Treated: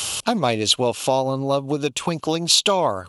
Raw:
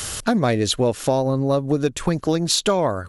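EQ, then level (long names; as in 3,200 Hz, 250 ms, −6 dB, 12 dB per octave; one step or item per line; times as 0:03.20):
high-pass filter 87 Hz
parametric band 950 Hz +10 dB 1.3 octaves
high shelf with overshoot 2,200 Hz +6.5 dB, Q 3
−4.5 dB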